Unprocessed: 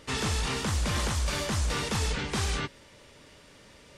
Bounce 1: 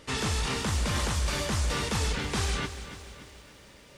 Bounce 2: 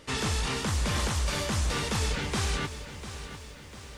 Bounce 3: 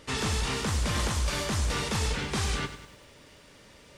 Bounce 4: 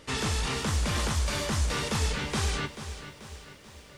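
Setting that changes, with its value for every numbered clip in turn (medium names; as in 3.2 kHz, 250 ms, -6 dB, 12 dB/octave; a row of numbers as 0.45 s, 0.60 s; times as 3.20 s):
bit-crushed delay, time: 287 ms, 698 ms, 97 ms, 436 ms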